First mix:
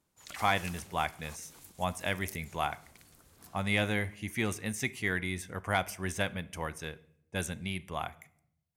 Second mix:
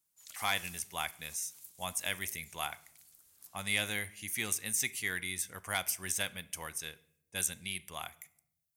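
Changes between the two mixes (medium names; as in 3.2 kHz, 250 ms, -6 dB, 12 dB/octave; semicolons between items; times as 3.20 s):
speech +8.5 dB; master: add pre-emphasis filter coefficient 0.9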